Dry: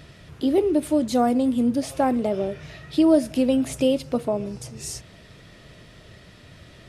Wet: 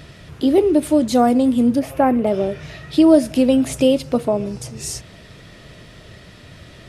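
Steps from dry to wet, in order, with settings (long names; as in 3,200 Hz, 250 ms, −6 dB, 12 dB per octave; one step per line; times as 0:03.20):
0:01.79–0:02.27: flat-topped bell 5,700 Hz −12 dB
level +5.5 dB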